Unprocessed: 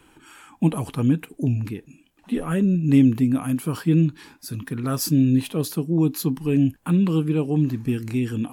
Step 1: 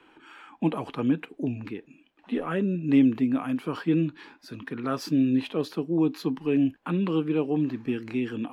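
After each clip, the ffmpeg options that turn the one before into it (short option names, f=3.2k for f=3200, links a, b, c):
-filter_complex "[0:a]acrossover=split=240 4200:gain=0.158 1 0.0708[a][b][c];[a][b][c]amix=inputs=3:normalize=0"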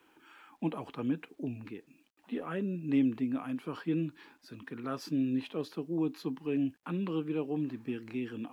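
-af "highpass=44,acrusher=bits=10:mix=0:aa=0.000001,volume=-8dB"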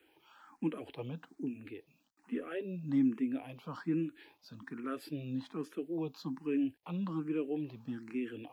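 -filter_complex "[0:a]asplit=2[a][b];[b]afreqshift=1.2[c];[a][c]amix=inputs=2:normalize=1"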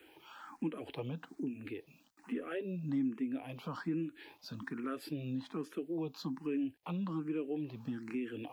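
-af "acompressor=threshold=-49dB:ratio=2,volume=7.5dB"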